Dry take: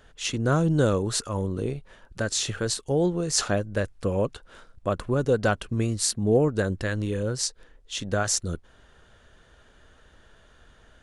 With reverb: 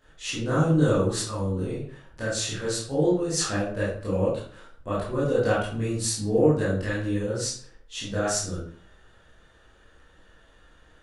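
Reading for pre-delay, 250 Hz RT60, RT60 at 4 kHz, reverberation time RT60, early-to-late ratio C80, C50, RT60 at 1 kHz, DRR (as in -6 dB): 16 ms, 0.60 s, 0.40 s, 0.50 s, 7.0 dB, 2.5 dB, 0.55 s, -10.0 dB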